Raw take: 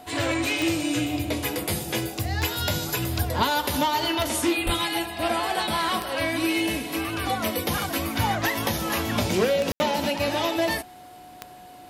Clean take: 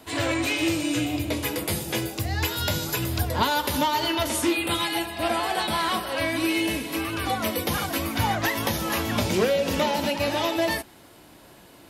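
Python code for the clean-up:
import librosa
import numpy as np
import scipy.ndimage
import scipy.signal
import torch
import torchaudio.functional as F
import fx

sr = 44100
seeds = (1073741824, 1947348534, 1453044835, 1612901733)

y = fx.fix_declick_ar(x, sr, threshold=10.0)
y = fx.notch(y, sr, hz=730.0, q=30.0)
y = fx.highpass(y, sr, hz=140.0, slope=24, at=(4.65, 4.77), fade=0.02)
y = fx.fix_ambience(y, sr, seeds[0], print_start_s=10.85, print_end_s=11.35, start_s=9.72, end_s=9.8)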